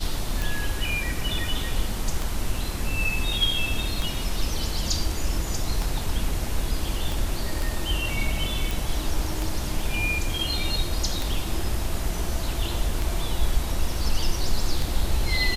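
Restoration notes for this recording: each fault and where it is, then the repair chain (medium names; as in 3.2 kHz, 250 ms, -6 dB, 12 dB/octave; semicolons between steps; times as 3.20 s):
tick 33 1/3 rpm
7.12 s: pop
8.71 s: pop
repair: de-click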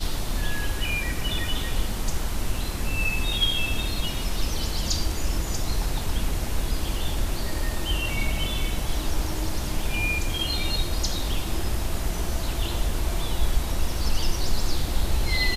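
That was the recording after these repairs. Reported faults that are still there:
7.12 s: pop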